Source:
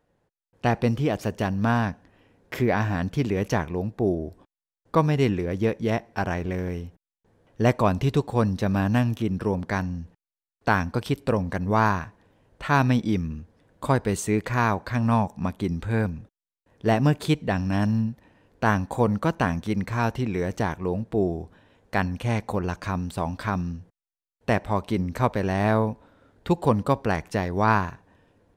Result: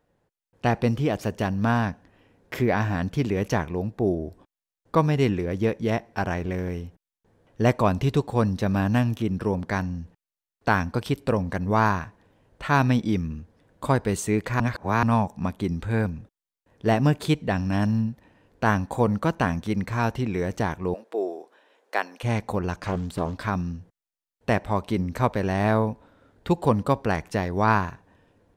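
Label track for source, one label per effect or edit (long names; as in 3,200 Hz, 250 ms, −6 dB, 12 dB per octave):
14.600000	15.030000	reverse
20.940000	22.230000	high-pass filter 380 Hz 24 dB per octave
22.760000	23.420000	highs frequency-modulated by the lows depth 0.63 ms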